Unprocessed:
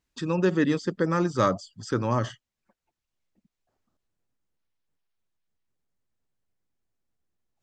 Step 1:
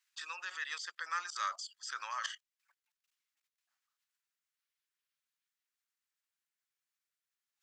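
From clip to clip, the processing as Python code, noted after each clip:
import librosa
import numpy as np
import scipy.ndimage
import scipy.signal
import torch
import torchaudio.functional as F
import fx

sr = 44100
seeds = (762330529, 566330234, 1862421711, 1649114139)

y = fx.level_steps(x, sr, step_db=17)
y = scipy.signal.sosfilt(scipy.signal.butter(4, 1300.0, 'highpass', fs=sr, output='sos'), y)
y = F.gain(torch.from_numpy(y), 8.0).numpy()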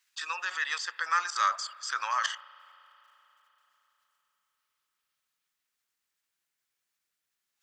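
y = fx.rev_spring(x, sr, rt60_s=4.0, pass_ms=(33,), chirp_ms=50, drr_db=17.5)
y = fx.dynamic_eq(y, sr, hz=900.0, q=0.73, threshold_db=-50.0, ratio=4.0, max_db=4)
y = F.gain(torch.from_numpy(y), 7.0).numpy()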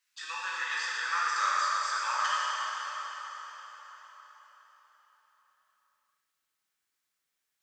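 y = fx.rev_plate(x, sr, seeds[0], rt60_s=4.9, hf_ratio=0.8, predelay_ms=0, drr_db=-7.5)
y = F.gain(torch.from_numpy(y), -7.0).numpy()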